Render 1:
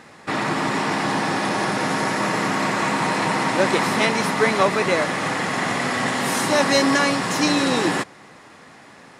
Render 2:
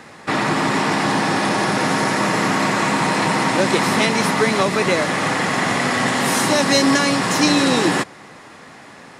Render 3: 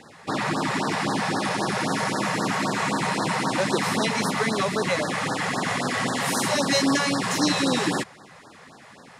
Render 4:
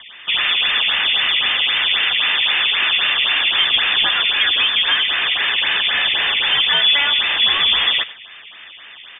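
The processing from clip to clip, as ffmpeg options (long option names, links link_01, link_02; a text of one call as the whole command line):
ffmpeg -i in.wav -filter_complex "[0:a]acrossover=split=330|3000[link_01][link_02][link_03];[link_02]acompressor=threshold=-21dB:ratio=6[link_04];[link_01][link_04][link_03]amix=inputs=3:normalize=0,volume=4.5dB" out.wav
ffmpeg -i in.wav -af "afftfilt=real='re*(1-between(b*sr/1024,250*pow(2700/250,0.5+0.5*sin(2*PI*3.8*pts/sr))/1.41,250*pow(2700/250,0.5+0.5*sin(2*PI*3.8*pts/sr))*1.41))':imag='im*(1-between(b*sr/1024,250*pow(2700/250,0.5+0.5*sin(2*PI*3.8*pts/sr))/1.41,250*pow(2700/250,0.5+0.5*sin(2*PI*3.8*pts/sr))*1.41))':win_size=1024:overlap=0.75,volume=-5.5dB" out.wav
ffmpeg -i in.wav -filter_complex "[0:a]asplit=2[link_01][link_02];[link_02]volume=25.5dB,asoftclip=hard,volume=-25.5dB,volume=-4dB[link_03];[link_01][link_03]amix=inputs=2:normalize=0,aecho=1:1:97:0.133,lowpass=frequency=3100:width_type=q:width=0.5098,lowpass=frequency=3100:width_type=q:width=0.6013,lowpass=frequency=3100:width_type=q:width=0.9,lowpass=frequency=3100:width_type=q:width=2.563,afreqshift=-3700,volume=5dB" out.wav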